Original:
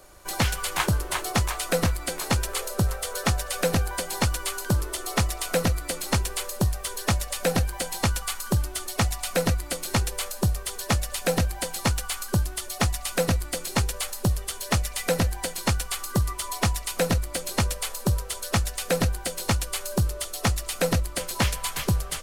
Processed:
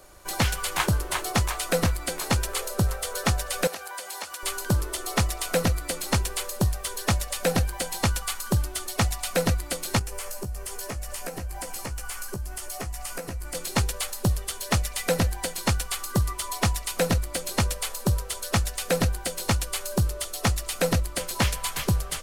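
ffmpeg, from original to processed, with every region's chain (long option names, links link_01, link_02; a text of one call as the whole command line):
ffmpeg -i in.wav -filter_complex "[0:a]asettb=1/sr,asplit=3[link_01][link_02][link_03];[link_01]atrim=end=3.674[link_04];[link_02]atrim=start=3.67:end=4.43,asetpts=PTS-STARTPTS,afade=type=in:duration=0.004:curve=qsin,afade=type=out:start_time=0.756:duration=0.004:curve=qsin,highpass=610,acompressor=threshold=-33dB:ratio=3:attack=3.2:release=140:knee=1:detection=peak[link_05];[link_03]atrim=start=4.426[link_06];[link_04][link_05]acrossfade=duration=0.004:curve1=hsin:curve2=qsin[link_07];[link_07][link_06]acrossfade=duration=0.004:curve1=qsin:curve2=hsin,asettb=1/sr,asplit=3[link_08][link_09][link_10];[link_08]atrim=end=9.994[link_11];[link_09]atrim=start=9.99:end=13.55,asetpts=PTS-STARTPTS,afade=type=in:duration=0.004:curve=qsin,afade=type=out:start_time=3.556:duration=0.004:curve=qsin,equalizer=frequency=3700:width_type=o:width=0.45:gain=-8.5,acompressor=threshold=-30dB:ratio=16:attack=3.2:release=140:knee=1:detection=peak,asplit=2[link_12][link_13];[link_13]adelay=15,volume=-5.5dB[link_14];[link_12][link_14]amix=inputs=2:normalize=0,atrim=end_sample=156996[link_15];[link_10]atrim=start=13.546[link_16];[link_11][link_15]acrossfade=duration=0.004:curve1=hsin:curve2=qsin[link_17];[link_17][link_16]acrossfade=duration=0.004:curve1=qsin:curve2=hsin" out.wav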